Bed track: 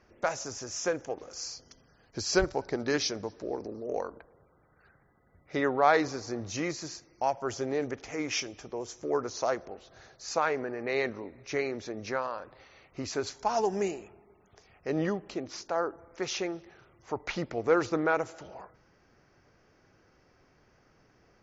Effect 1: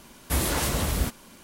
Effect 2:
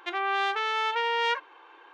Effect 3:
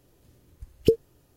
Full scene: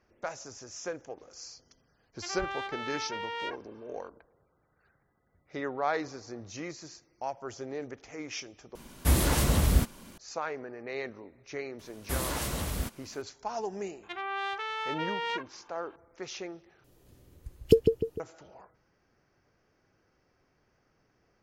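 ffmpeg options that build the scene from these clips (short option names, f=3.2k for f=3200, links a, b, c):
-filter_complex "[2:a]asplit=2[a][b];[1:a]asplit=2[c][d];[0:a]volume=-7dB[e];[c]lowshelf=f=290:g=6.5[f];[3:a]asplit=2[g][h];[h]adelay=150,lowpass=f=2k:p=1,volume=-4.5dB,asplit=2[i][j];[j]adelay=150,lowpass=f=2k:p=1,volume=0.44,asplit=2[k][l];[l]adelay=150,lowpass=f=2k:p=1,volume=0.44,asplit=2[m][n];[n]adelay=150,lowpass=f=2k:p=1,volume=0.44,asplit=2[o][p];[p]adelay=150,lowpass=f=2k:p=1,volume=0.44[q];[g][i][k][m][o][q]amix=inputs=6:normalize=0[r];[e]asplit=3[s][t][u];[s]atrim=end=8.754[v];[f]atrim=end=1.43,asetpts=PTS-STARTPTS,volume=-2.5dB[w];[t]atrim=start=10.176:end=16.844[x];[r]atrim=end=1.36,asetpts=PTS-STARTPTS,volume=-0.5dB[y];[u]atrim=start=18.196[z];[a]atrim=end=1.93,asetpts=PTS-STARTPTS,volume=-10dB,afade=t=in:d=0.004:c=hsin,afade=t=out:st=1.926:d=0.004:c=hsin,adelay=2160[aa];[d]atrim=end=1.43,asetpts=PTS-STARTPTS,volume=-7dB,afade=t=in:d=0.004:c=hsin,afade=t=out:st=1.426:d=0.004:c=hsin,adelay=11790[ab];[b]atrim=end=1.93,asetpts=PTS-STARTPTS,volume=-7dB,afade=t=in:d=0.004:c=hsin,afade=t=out:st=1.926:d=0.004:c=hsin,adelay=14030[ac];[v][w]acrossfade=d=0.004:c1=hsin:c2=hsin[ad];[ad][x]acrossfade=d=0.004:c1=hsin:c2=hsin[ae];[ae][y]acrossfade=d=0.004:c1=hsin:c2=hsin[af];[af][z]acrossfade=d=0.004:c1=hsin:c2=hsin[ag];[ag][aa][ab][ac]amix=inputs=4:normalize=0"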